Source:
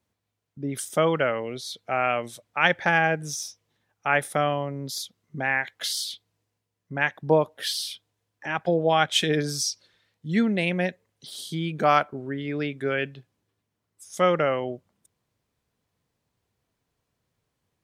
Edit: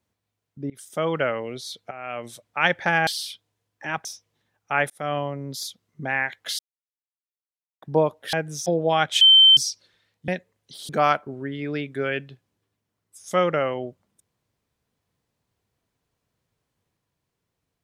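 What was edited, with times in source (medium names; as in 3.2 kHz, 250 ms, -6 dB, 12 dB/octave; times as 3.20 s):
0.70–1.21 s: fade in, from -22.5 dB
1.91–2.30 s: fade in quadratic, from -15 dB
3.07–3.40 s: swap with 7.68–8.66 s
4.25–4.53 s: fade in
5.94–7.17 s: mute
9.21–9.57 s: bleep 3.1 kHz -9 dBFS
10.28–10.81 s: delete
11.42–11.75 s: delete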